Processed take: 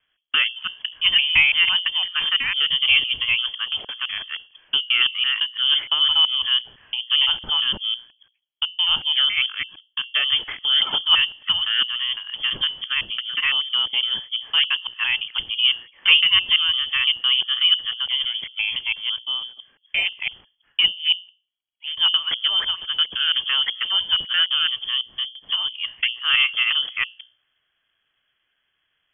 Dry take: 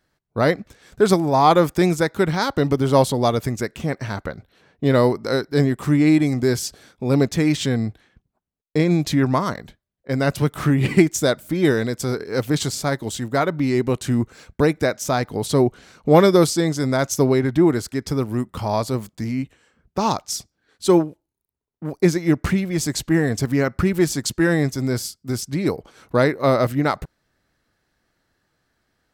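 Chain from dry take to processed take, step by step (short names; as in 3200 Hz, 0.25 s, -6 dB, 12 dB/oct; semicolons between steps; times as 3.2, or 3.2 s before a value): local time reversal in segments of 0.169 s; notches 60/120/180/240/300/360/420/480/540/600 Hz; inverted band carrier 3300 Hz; gain -1.5 dB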